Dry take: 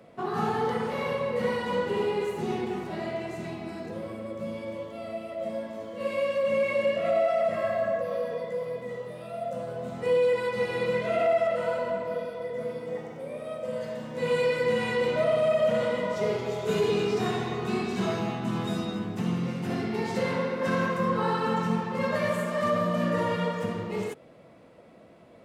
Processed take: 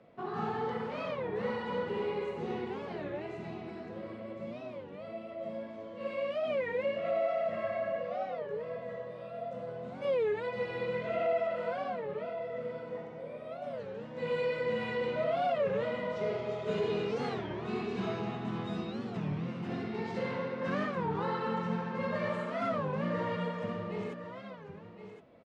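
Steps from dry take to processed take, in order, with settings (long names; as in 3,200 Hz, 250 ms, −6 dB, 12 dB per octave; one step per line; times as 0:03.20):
low-pass filter 4,000 Hz 12 dB per octave
single-tap delay 1,065 ms −10.5 dB
wow of a warped record 33 1/3 rpm, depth 250 cents
level −7 dB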